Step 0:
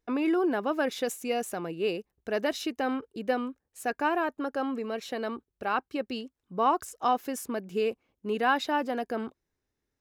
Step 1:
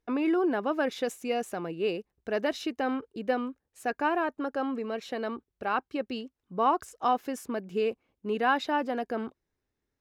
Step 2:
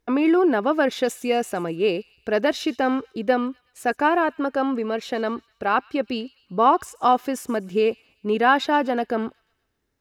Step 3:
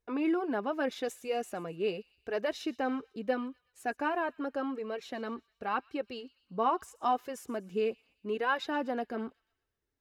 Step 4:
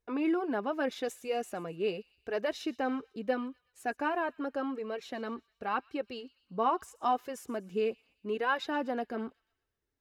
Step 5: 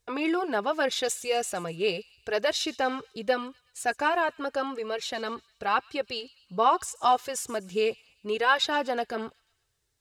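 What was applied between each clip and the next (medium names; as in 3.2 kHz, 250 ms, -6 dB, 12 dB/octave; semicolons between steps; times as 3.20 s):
treble shelf 6.7 kHz -9.5 dB
feedback echo behind a high-pass 123 ms, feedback 50%, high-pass 2.7 kHz, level -19 dB; trim +8 dB
flange 0.82 Hz, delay 1.6 ms, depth 3.6 ms, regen -38%; trim -8 dB
no audible change
graphic EQ 125/250/4000/8000 Hz +6/-10/+6/+10 dB; trim +7 dB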